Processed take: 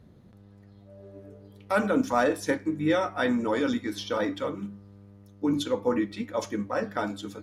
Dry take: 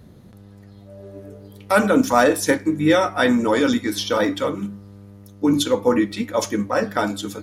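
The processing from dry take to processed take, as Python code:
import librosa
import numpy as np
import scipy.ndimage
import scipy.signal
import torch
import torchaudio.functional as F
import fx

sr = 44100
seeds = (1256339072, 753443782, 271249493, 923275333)

y = fx.lowpass(x, sr, hz=4000.0, slope=6)
y = y * librosa.db_to_amplitude(-8.0)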